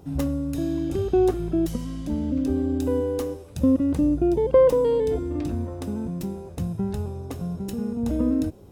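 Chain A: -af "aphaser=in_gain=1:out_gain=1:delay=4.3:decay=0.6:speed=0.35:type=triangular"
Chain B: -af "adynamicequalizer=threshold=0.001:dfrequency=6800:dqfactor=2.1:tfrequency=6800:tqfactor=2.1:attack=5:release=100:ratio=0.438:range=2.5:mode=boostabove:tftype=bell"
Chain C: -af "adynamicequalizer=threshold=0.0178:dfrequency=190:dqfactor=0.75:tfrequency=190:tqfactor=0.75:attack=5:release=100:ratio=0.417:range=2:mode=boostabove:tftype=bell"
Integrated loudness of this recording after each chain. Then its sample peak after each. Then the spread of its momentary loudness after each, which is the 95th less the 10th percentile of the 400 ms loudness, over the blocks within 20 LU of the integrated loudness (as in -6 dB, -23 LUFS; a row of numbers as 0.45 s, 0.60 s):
-24.0 LUFS, -24.5 LUFS, -22.5 LUFS; -5.0 dBFS, -8.0 dBFS, -7.0 dBFS; 14 LU, 12 LU, 11 LU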